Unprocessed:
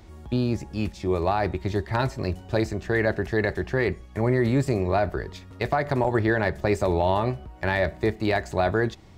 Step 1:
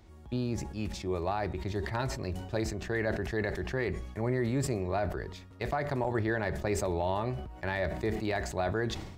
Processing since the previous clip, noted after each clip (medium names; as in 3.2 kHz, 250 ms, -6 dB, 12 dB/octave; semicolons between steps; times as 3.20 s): decay stretcher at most 57 dB/s; trim -8.5 dB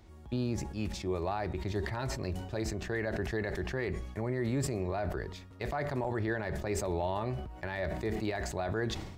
peak limiter -23 dBFS, peak gain reduction 7 dB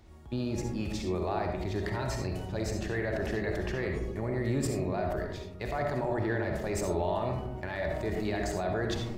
reverberation RT60 0.90 s, pre-delay 25 ms, DRR 2.5 dB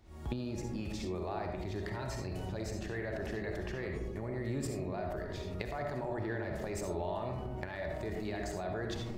recorder AGC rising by 61 dB/s; trim -6.5 dB